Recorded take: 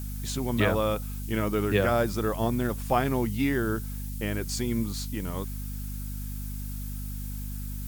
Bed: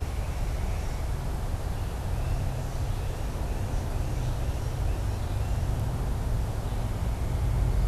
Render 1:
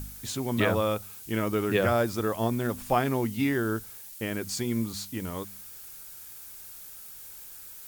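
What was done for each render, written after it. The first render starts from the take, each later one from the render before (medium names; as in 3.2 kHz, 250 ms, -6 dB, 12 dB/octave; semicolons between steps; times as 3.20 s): de-hum 50 Hz, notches 5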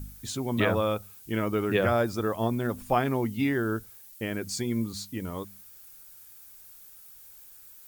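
noise reduction 8 dB, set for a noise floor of -45 dBFS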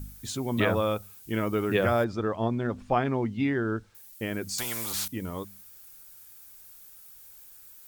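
0.83–1.44 s: short-mantissa float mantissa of 6-bit; 2.04–3.95 s: distance through air 130 m; 4.58–5.08 s: spectrum-flattening compressor 4:1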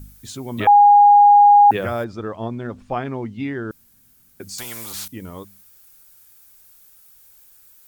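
0.67–1.71 s: bleep 820 Hz -6.5 dBFS; 3.71–4.40 s: room tone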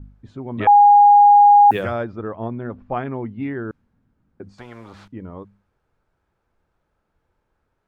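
level-controlled noise filter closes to 940 Hz, open at -11 dBFS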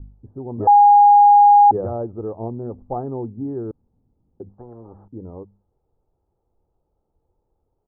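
inverse Chebyshev low-pass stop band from 2.2 kHz, stop band 50 dB; comb 2.4 ms, depth 30%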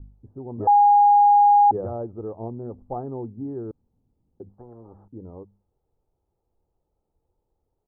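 trim -4.5 dB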